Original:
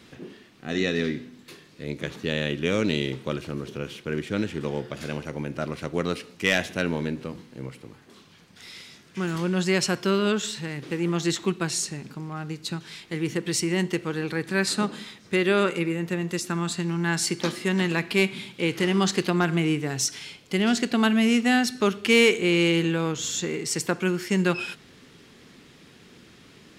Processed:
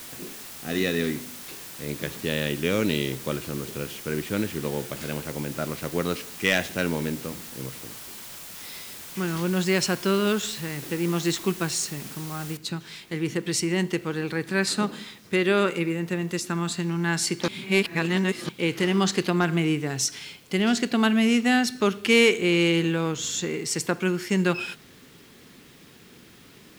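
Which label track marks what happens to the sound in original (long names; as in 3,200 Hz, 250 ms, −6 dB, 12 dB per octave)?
12.570000	12.570000	noise floor change −41 dB −59 dB
17.480000	18.490000	reverse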